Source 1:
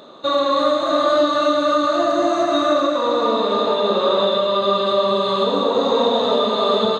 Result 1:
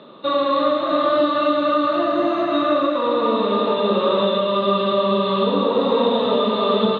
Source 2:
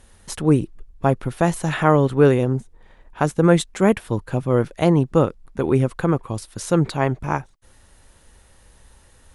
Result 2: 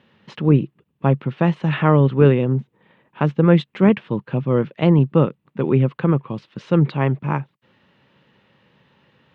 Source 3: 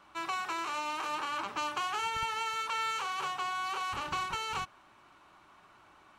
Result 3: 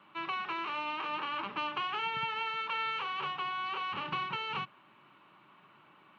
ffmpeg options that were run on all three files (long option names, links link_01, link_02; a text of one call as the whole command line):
ffmpeg -i in.wav -af "highpass=frequency=130:width=0.5412,highpass=frequency=130:width=1.3066,equalizer=frequency=140:width_type=q:width=4:gain=7,equalizer=frequency=200:width_type=q:width=4:gain=5,equalizer=frequency=720:width_type=q:width=4:gain=-6,equalizer=frequency=1500:width_type=q:width=4:gain=-3,equalizer=frequency=2800:width_type=q:width=4:gain=4,lowpass=frequency=3400:width=0.5412,lowpass=frequency=3400:width=1.3066" -ar 44100 -c:a nellymoser out.flv